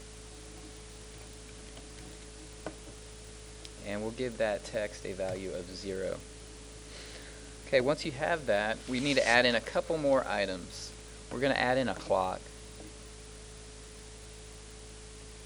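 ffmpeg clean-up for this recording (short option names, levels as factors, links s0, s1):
-af "adeclick=t=4,bandreject=f=53.4:t=h:w=4,bandreject=f=106.8:t=h:w=4,bandreject=f=160.2:t=h:w=4,bandreject=f=213.6:t=h:w=4,bandreject=f=267:t=h:w=4,bandreject=f=430:w=30,afwtdn=0.0032"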